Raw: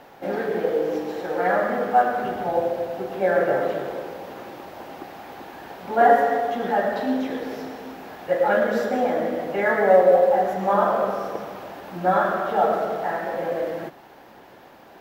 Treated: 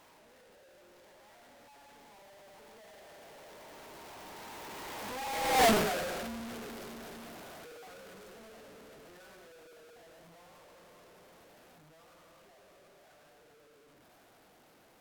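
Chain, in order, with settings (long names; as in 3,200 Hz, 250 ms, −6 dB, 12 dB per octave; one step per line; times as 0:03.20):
sign of each sample alone
source passing by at 0:05.65, 46 m/s, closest 3.3 metres
level +1.5 dB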